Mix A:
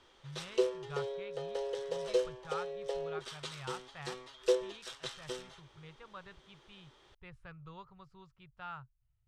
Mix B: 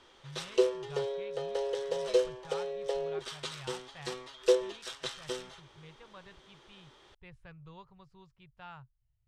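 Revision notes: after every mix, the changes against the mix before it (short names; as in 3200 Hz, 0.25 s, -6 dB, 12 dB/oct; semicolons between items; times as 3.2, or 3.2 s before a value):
speech: add bell 1300 Hz -8.5 dB 0.39 oct; background +4.0 dB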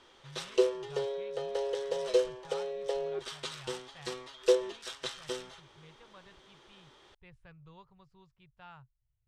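speech -3.5 dB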